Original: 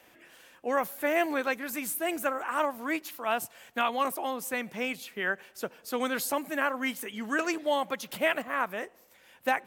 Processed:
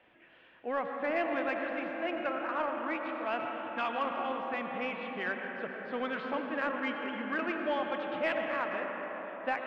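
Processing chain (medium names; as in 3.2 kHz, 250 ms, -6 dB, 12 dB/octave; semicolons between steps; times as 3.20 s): steep low-pass 3.3 kHz 36 dB/octave; reverberation RT60 5.5 s, pre-delay 55 ms, DRR 2 dB; in parallel at -5 dB: saturation -22 dBFS, distortion -14 dB; on the sum: trim -8.5 dB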